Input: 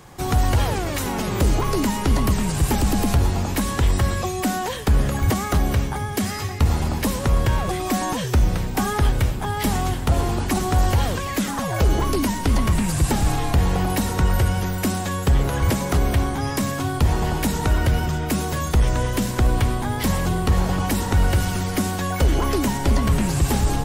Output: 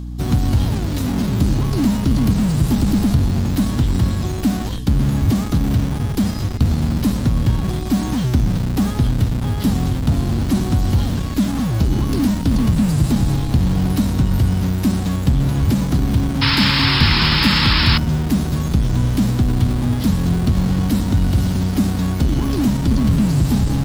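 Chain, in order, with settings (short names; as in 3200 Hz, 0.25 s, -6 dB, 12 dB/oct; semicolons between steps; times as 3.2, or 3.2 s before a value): ten-band EQ 125 Hz +8 dB, 250 Hz +11 dB, 500 Hz -11 dB, 1000 Hz -3 dB, 2000 Hz -9 dB, 4000 Hz +6 dB, 8000 Hz -3 dB; in parallel at -8 dB: Schmitt trigger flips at -21 dBFS; on the sum: painted sound noise, 16.41–17.98, 830–5400 Hz -14 dBFS; reverse; upward compressor, threshold -21 dBFS; reverse; hum 60 Hz, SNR 11 dB; gain -4 dB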